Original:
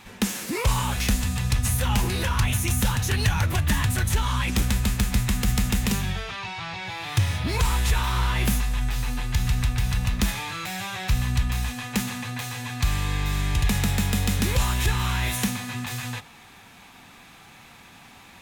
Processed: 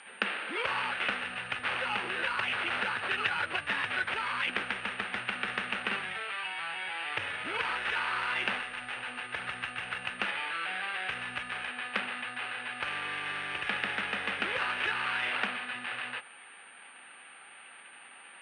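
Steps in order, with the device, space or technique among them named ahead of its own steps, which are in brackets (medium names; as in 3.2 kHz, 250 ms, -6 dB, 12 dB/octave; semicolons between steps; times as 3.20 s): toy sound module (decimation joined by straight lines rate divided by 8×; class-D stage that switches slowly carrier 9 kHz; cabinet simulation 630–4900 Hz, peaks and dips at 680 Hz -5 dB, 1 kHz -7 dB, 1.5 kHz +4 dB, 2.7 kHz +6 dB, 4.7 kHz +7 dB)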